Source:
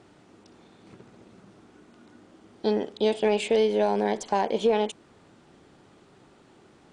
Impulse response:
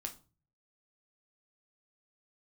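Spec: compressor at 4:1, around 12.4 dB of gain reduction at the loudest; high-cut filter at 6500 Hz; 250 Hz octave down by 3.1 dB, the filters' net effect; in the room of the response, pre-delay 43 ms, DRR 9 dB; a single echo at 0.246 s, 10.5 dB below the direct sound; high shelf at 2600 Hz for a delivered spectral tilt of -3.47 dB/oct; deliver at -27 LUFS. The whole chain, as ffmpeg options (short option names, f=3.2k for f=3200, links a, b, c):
-filter_complex "[0:a]lowpass=6.5k,equalizer=f=250:t=o:g=-4,highshelf=f=2.6k:g=8,acompressor=threshold=-34dB:ratio=4,aecho=1:1:246:0.299,asplit=2[a][b];[1:a]atrim=start_sample=2205,adelay=43[c];[b][c]afir=irnorm=-1:irlink=0,volume=-7dB[d];[a][d]amix=inputs=2:normalize=0,volume=9dB"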